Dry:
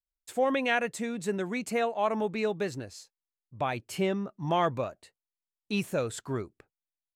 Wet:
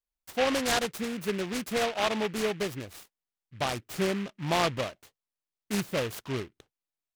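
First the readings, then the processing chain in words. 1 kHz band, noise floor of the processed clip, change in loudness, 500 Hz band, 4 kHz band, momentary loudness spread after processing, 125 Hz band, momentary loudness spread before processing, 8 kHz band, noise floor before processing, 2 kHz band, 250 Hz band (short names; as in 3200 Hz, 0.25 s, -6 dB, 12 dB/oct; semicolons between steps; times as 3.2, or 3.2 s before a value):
-1.0 dB, under -85 dBFS, +0.5 dB, -0.5 dB, +7.5 dB, 10 LU, 0.0 dB, 9 LU, +5.5 dB, under -85 dBFS, +1.0 dB, 0.0 dB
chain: noise-modulated delay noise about 1900 Hz, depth 0.13 ms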